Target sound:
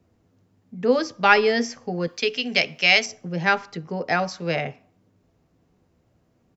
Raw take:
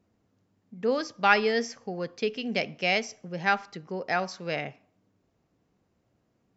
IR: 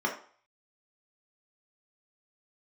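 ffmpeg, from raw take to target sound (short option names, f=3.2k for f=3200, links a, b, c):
-filter_complex "[0:a]asettb=1/sr,asplit=3[a][b][c];[a]atrim=end=2.074[d];[b]atrim=start=2.07:end=3.06,asetpts=PTS-STARTPTS,afade=t=in:d=0.004:c=qsin,afade=t=out:st=0.986:d=0.004:c=qsin,tiltshelf=f=970:g=-7.5[e];[c]atrim=start=3.056[f];[d][e]acrossfade=d=0.004:c1=hsin:c2=qsin[g];[g][f]acrossfade=d=0.004:c1=qsin:c2=hsin,acrossover=split=140|850|1800[h][i][j][k];[h]acontrast=34[l];[i]asplit=2[m][n];[n]adelay=12,volume=-2.5dB[o];[m][o]amix=inputs=2:normalize=0[p];[l][p][j][k]amix=inputs=4:normalize=0,volume=5dB"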